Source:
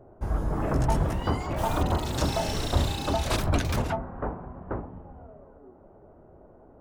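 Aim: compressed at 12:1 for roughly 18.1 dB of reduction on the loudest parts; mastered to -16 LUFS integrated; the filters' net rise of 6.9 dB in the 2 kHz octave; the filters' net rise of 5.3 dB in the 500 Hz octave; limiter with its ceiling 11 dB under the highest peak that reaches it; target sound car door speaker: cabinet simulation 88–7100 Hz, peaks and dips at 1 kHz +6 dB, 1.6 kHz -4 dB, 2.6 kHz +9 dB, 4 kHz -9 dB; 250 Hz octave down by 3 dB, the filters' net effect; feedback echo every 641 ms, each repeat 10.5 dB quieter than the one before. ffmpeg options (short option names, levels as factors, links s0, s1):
-af "equalizer=f=250:t=o:g=-7,equalizer=f=500:t=o:g=8,equalizer=f=2000:t=o:g=6,acompressor=threshold=0.0158:ratio=12,alimiter=level_in=3.98:limit=0.0631:level=0:latency=1,volume=0.251,highpass=88,equalizer=f=1000:t=q:w=4:g=6,equalizer=f=1600:t=q:w=4:g=-4,equalizer=f=2600:t=q:w=4:g=9,equalizer=f=4000:t=q:w=4:g=-9,lowpass=f=7100:w=0.5412,lowpass=f=7100:w=1.3066,aecho=1:1:641|1282|1923:0.299|0.0896|0.0269,volume=28.2"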